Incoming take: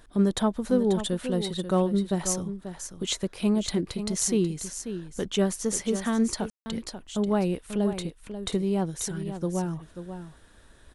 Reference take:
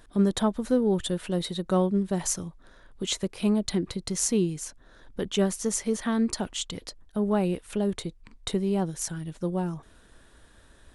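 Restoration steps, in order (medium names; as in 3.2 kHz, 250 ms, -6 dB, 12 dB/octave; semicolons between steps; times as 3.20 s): room tone fill 6.50–6.66 s; inverse comb 538 ms -10 dB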